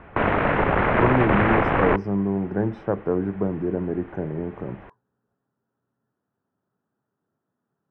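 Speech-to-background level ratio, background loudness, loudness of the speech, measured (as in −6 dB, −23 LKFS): −4.5 dB, −21.0 LKFS, −25.5 LKFS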